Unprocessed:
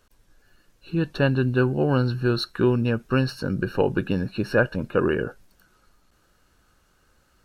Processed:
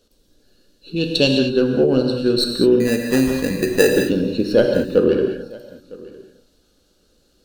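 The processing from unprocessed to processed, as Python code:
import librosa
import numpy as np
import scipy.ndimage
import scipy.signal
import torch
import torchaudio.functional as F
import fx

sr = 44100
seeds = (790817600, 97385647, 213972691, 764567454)

y = fx.tracing_dist(x, sr, depth_ms=0.052)
y = fx.high_shelf_res(y, sr, hz=2000.0, db=7.5, q=3.0, at=(0.96, 1.39))
y = fx.hpss(y, sr, part='harmonic', gain_db=-4)
y = fx.graphic_eq_10(y, sr, hz=(125, 250, 500, 1000, 2000, 4000), db=(-5, 6, 8, -10, -9, 10))
y = fx.sample_hold(y, sr, seeds[0], rate_hz=2200.0, jitter_pct=0, at=(2.8, 3.89))
y = y + 10.0 ** (-22.0 / 20.0) * np.pad(y, (int(957 * sr / 1000.0), 0))[:len(y)]
y = fx.rev_gated(y, sr, seeds[1], gate_ms=240, shape='flat', drr_db=2.5)
y = y * librosa.db_to_amplitude(1.5)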